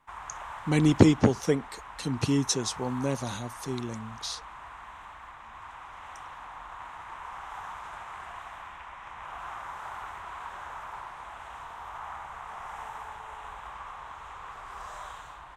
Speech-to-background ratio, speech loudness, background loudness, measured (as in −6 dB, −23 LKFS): 15.0 dB, −27.0 LKFS, −42.0 LKFS